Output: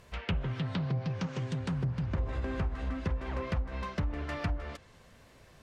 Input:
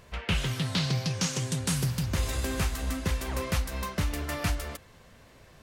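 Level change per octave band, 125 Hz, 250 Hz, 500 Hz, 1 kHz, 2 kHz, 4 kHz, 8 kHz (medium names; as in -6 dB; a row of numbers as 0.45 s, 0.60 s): -3.0 dB, -3.0 dB, -3.0 dB, -4.0 dB, -7.0 dB, -13.0 dB, under -20 dB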